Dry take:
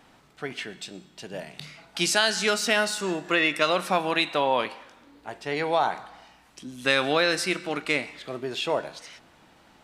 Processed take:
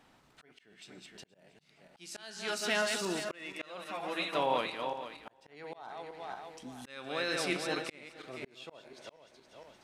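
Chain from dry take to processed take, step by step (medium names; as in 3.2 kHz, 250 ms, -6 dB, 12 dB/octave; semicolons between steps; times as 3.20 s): backward echo that repeats 235 ms, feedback 50%, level -6 dB; slow attack 668 ms; 3.84–4.33 s: three-phase chorus; trim -7.5 dB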